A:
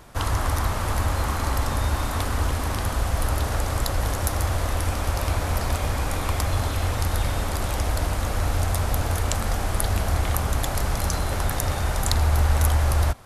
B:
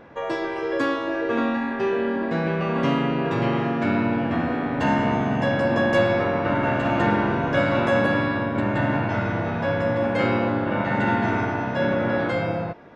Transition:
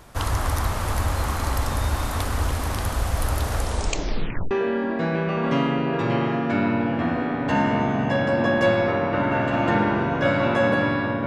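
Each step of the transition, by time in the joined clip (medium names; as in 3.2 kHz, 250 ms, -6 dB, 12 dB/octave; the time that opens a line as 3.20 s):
A
3.57 s: tape stop 0.94 s
4.51 s: go over to B from 1.83 s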